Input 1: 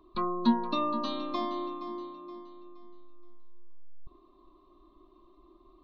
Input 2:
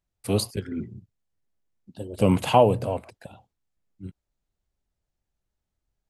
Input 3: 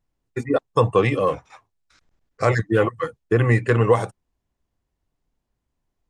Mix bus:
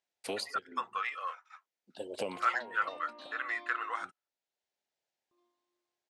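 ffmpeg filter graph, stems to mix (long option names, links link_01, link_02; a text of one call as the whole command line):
ffmpeg -i stem1.wav -i stem2.wav -i stem3.wav -filter_complex "[0:a]acompressor=threshold=-56dB:ratio=1.5,asoftclip=type=tanh:threshold=-34dB,adelay=2150,volume=-1dB,asplit=3[link_01][link_02][link_03];[link_01]atrim=end=4.04,asetpts=PTS-STARTPTS,afade=type=out:start_time=4.036:duration=0.004:curve=hsin[link_04];[link_02]atrim=start=4.04:end=5.31,asetpts=PTS-STARTPTS,volume=0[link_05];[link_03]atrim=start=5.31,asetpts=PTS-STARTPTS,afade=type=in:duration=0.004:curve=hsin[link_06];[link_04][link_05][link_06]concat=n=3:v=0:a=1[link_07];[1:a]acompressor=threshold=-27dB:ratio=10,volume=2.5dB[link_08];[2:a]agate=range=-16dB:threshold=-52dB:ratio=16:detection=peak,highpass=frequency=1300:width_type=q:width=13,volume=-13dB,asplit=2[link_09][link_10];[link_10]apad=whole_len=268853[link_11];[link_08][link_11]sidechaincompress=threshold=-33dB:ratio=6:attack=20:release=1060[link_12];[link_07][link_12][link_09]amix=inputs=3:normalize=0,highpass=570,lowpass=6300,equalizer=frequency=1200:width=3.4:gain=-9" out.wav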